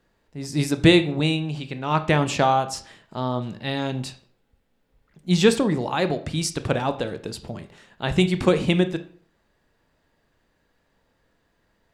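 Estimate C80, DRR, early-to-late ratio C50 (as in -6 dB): 18.5 dB, 10.0 dB, 14.0 dB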